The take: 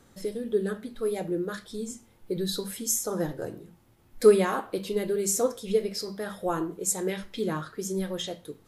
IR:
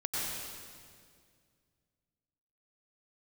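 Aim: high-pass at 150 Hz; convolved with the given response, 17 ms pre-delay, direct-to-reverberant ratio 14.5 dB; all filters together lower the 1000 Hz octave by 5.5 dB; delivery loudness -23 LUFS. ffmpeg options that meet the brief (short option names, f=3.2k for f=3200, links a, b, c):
-filter_complex "[0:a]highpass=150,equalizer=f=1k:t=o:g=-7.5,asplit=2[a][b];[1:a]atrim=start_sample=2205,adelay=17[c];[b][c]afir=irnorm=-1:irlink=0,volume=-20.5dB[d];[a][d]amix=inputs=2:normalize=0,volume=6.5dB"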